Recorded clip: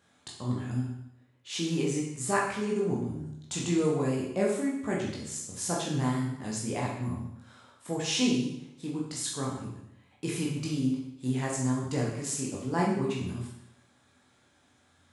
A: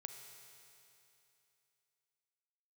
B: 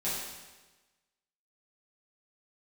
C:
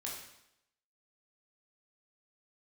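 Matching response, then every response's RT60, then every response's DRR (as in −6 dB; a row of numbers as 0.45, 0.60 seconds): C; 2.9, 1.2, 0.80 seconds; 5.5, −10.5, −4.0 decibels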